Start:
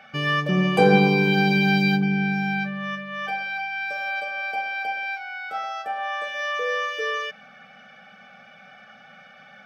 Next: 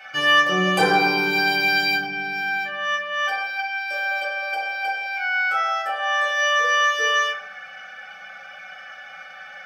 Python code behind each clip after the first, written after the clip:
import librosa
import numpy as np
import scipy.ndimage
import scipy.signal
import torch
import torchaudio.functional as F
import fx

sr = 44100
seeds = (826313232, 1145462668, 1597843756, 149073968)

y = fx.highpass(x, sr, hz=980.0, slope=6)
y = fx.high_shelf(y, sr, hz=2700.0, db=8.0)
y = fx.rev_fdn(y, sr, rt60_s=0.64, lf_ratio=0.85, hf_ratio=0.4, size_ms=54.0, drr_db=-7.0)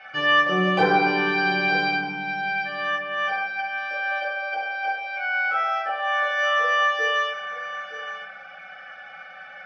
y = scipy.signal.sosfilt(scipy.signal.butter(4, 5500.0, 'lowpass', fs=sr, output='sos'), x)
y = fx.high_shelf(y, sr, hz=3500.0, db=-11.5)
y = y + 10.0 ** (-12.5 / 20.0) * np.pad(y, (int(920 * sr / 1000.0), 0))[:len(y)]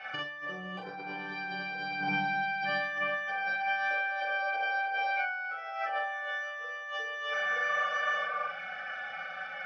y = fx.spec_repair(x, sr, seeds[0], start_s=7.72, length_s=0.73, low_hz=210.0, high_hz=1200.0, source='before')
y = fx.over_compress(y, sr, threshold_db=-31.0, ratio=-1.0)
y = fx.doubler(y, sr, ms=42.0, db=-5.0)
y = y * librosa.db_to_amplitude(-5.0)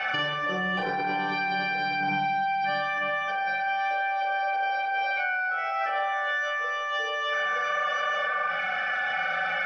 y = fx.rider(x, sr, range_db=10, speed_s=2.0)
y = fx.rev_spring(y, sr, rt60_s=1.3, pass_ms=(47,), chirp_ms=30, drr_db=7.0)
y = fx.env_flatten(y, sr, amount_pct=70)
y = y * librosa.db_to_amplitude(1.0)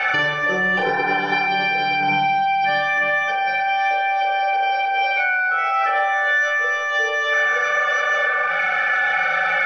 y = fx.hum_notches(x, sr, base_hz=60, count=2)
y = fx.spec_repair(y, sr, seeds[1], start_s=0.96, length_s=0.48, low_hz=610.0, high_hz=1900.0, source='before')
y = y + 0.51 * np.pad(y, (int(2.2 * sr / 1000.0), 0))[:len(y)]
y = y * librosa.db_to_amplitude(7.5)